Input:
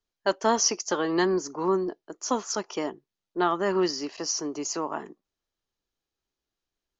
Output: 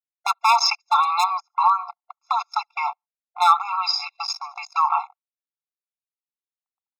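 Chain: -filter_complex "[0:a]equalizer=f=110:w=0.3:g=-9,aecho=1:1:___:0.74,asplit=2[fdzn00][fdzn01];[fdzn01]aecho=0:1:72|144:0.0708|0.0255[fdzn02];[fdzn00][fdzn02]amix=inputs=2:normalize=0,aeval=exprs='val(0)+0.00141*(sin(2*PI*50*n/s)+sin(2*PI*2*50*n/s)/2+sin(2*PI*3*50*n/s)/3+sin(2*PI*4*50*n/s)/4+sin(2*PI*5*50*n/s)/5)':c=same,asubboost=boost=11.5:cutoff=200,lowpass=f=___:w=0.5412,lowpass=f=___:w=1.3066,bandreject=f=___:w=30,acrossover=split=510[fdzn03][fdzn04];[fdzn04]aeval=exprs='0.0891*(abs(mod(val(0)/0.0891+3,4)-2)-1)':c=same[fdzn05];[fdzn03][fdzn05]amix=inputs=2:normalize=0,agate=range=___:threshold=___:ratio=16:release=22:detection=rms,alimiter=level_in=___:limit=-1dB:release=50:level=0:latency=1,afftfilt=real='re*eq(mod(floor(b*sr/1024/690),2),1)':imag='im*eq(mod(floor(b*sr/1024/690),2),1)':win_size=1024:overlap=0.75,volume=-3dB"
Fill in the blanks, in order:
4.5, 4.2k, 4.2k, 2.8k, -37dB, -36dB, 21.5dB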